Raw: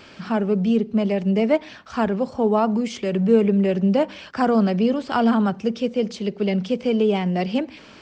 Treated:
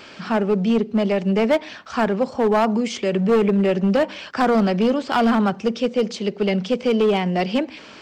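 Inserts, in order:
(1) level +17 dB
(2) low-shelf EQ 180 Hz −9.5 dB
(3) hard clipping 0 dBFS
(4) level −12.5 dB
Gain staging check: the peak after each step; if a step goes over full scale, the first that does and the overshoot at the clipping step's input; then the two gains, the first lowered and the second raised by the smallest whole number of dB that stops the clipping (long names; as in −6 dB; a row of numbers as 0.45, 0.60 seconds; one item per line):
+11.0, +9.0, 0.0, −12.5 dBFS
step 1, 9.0 dB
step 1 +8 dB, step 4 −3.5 dB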